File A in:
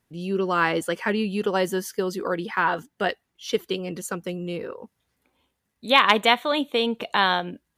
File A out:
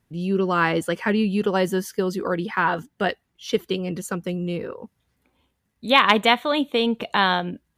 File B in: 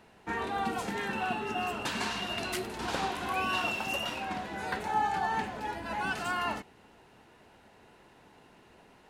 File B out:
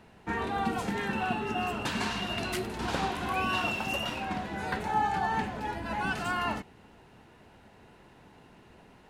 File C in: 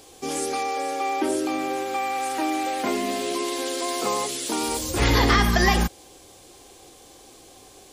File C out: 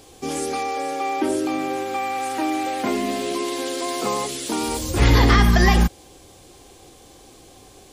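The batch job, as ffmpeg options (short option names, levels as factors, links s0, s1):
-af "bass=f=250:g=6,treble=f=4000:g=-2,volume=1.12"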